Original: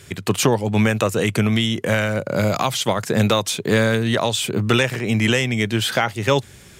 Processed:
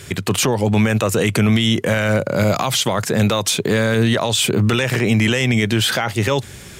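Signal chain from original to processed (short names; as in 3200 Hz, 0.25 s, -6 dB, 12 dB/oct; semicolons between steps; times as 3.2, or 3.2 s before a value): limiter -15.5 dBFS, peak gain reduction 11 dB; gain +7.5 dB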